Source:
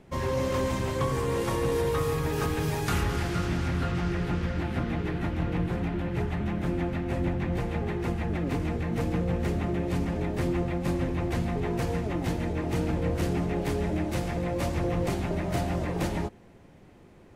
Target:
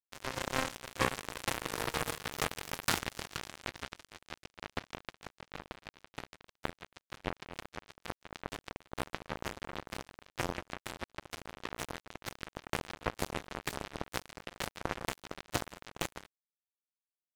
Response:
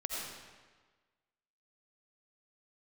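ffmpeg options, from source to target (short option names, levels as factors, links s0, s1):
-filter_complex "[0:a]lowshelf=f=350:g=-7,asplit=2[s0][s1];[s1]acompressor=threshold=0.0126:ratio=20,volume=1[s2];[s0][s2]amix=inputs=2:normalize=0,flanger=delay=6.7:depth=2.1:regen=-62:speed=0.13:shape=triangular,acrusher=bits=3:mix=0:aa=0.5,volume=2.66"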